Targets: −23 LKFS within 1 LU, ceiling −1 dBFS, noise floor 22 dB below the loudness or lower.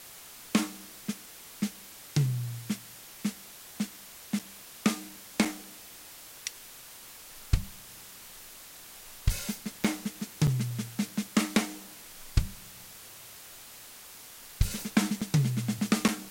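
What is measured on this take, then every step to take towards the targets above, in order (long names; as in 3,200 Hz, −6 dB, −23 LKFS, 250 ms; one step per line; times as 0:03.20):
number of dropouts 6; longest dropout 5.5 ms; background noise floor −49 dBFS; target noise floor −54 dBFS; integrated loudness −32.0 LKFS; sample peak −11.5 dBFS; target loudness −23.0 LKFS
→ repair the gap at 0:04.39/0:05.45/0:09.84/0:10.47/0:15.21/0:16.08, 5.5 ms
noise reduction from a noise print 6 dB
level +9 dB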